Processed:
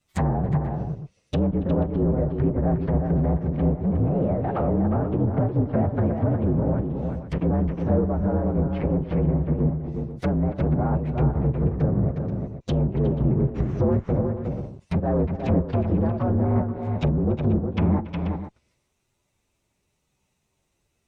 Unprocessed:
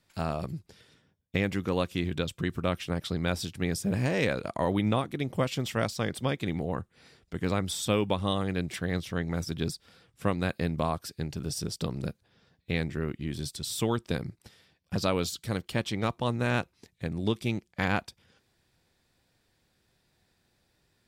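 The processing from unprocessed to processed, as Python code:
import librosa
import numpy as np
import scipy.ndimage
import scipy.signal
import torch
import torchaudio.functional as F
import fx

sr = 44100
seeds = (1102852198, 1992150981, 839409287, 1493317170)

p1 = fx.partial_stretch(x, sr, pct=119)
p2 = fx.fuzz(p1, sr, gain_db=39.0, gate_db=-45.0)
p3 = p1 + (p2 * librosa.db_to_amplitude(-8.0))
p4 = fx.env_lowpass_down(p3, sr, base_hz=590.0, full_db=-20.0)
p5 = fx.rider(p4, sr, range_db=10, speed_s=0.5)
p6 = p5 + fx.echo_multitap(p5, sr, ms=(41, 280, 361, 483), db=(-19.0, -16.0, -5.5, -12.0), dry=0)
y = fx.env_lowpass_down(p6, sr, base_hz=1900.0, full_db=-19.0)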